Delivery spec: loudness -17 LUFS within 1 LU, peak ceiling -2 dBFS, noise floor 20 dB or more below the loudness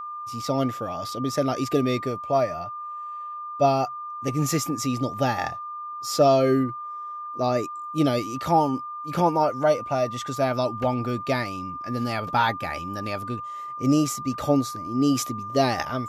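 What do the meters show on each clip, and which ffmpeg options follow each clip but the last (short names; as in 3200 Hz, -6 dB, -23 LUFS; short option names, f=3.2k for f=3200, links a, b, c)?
steady tone 1200 Hz; tone level -32 dBFS; loudness -25.5 LUFS; peak -8.0 dBFS; loudness target -17.0 LUFS
-> -af "bandreject=f=1.2k:w=30"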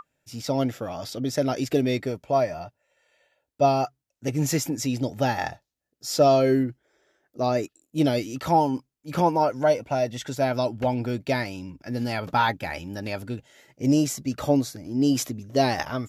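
steady tone none; loudness -25.5 LUFS; peak -8.5 dBFS; loudness target -17.0 LUFS
-> -af "volume=8.5dB,alimiter=limit=-2dB:level=0:latency=1"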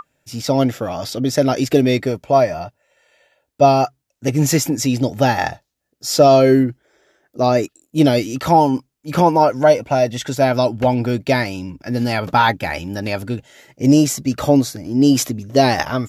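loudness -17.0 LUFS; peak -2.0 dBFS; noise floor -74 dBFS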